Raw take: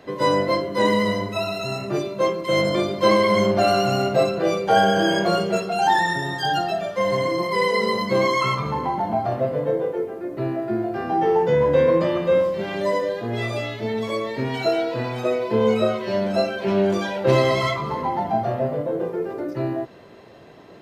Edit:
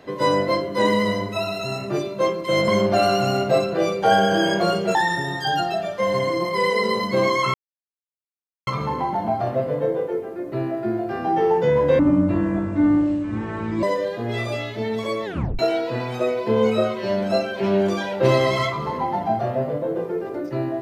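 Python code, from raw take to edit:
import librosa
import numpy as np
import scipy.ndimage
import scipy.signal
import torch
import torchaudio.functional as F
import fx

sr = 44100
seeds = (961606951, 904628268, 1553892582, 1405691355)

y = fx.edit(x, sr, fx.cut(start_s=2.68, length_s=0.65),
    fx.cut(start_s=5.6, length_s=0.33),
    fx.insert_silence(at_s=8.52, length_s=1.13),
    fx.speed_span(start_s=11.84, length_s=1.03, speed=0.56),
    fx.tape_stop(start_s=14.29, length_s=0.34), tone=tone)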